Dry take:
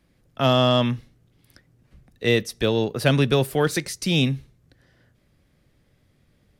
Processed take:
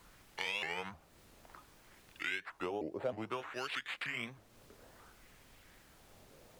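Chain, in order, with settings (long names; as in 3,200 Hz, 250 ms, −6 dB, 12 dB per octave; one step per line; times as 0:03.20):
pitch glide at a constant tempo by −6 semitones ending unshifted
bad sample-rate conversion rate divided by 8×, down none, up hold
auto-filter band-pass sine 0.59 Hz 540–2,600 Hz
background noise pink −73 dBFS
downward compressor 3 to 1, threshold −53 dBFS, peak gain reduction 22.5 dB
pitch modulation by a square or saw wave saw up 3.2 Hz, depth 250 cents
level +11 dB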